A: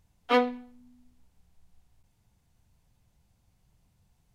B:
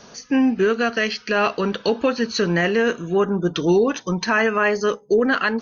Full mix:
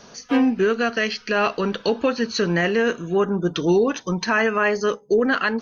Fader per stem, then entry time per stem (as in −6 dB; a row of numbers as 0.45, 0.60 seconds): −5.0, −1.0 decibels; 0.00, 0.00 seconds